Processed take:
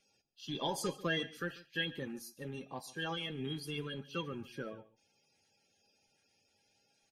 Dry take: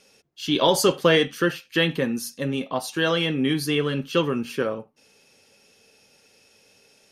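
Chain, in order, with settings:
spectral magnitudes quantised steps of 30 dB
low-shelf EQ 130 Hz +5 dB
tuned comb filter 810 Hz, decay 0.18 s, harmonics all, mix 80%
single-tap delay 142 ms −19 dB
level −4.5 dB

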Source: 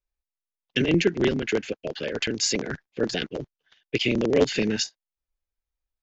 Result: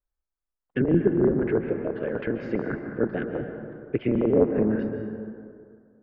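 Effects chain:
Chebyshev low-pass filter 1,500 Hz, order 3
treble cut that deepens with the level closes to 890 Hz, closed at −19 dBFS
dense smooth reverb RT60 2.2 s, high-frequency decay 0.45×, pre-delay 120 ms, DRR 5.5 dB
level +1 dB

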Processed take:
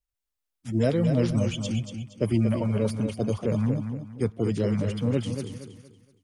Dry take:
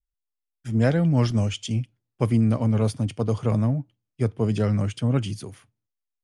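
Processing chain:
spectral magnitudes quantised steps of 30 dB
repeating echo 234 ms, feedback 32%, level −7.5 dB
level −2.5 dB

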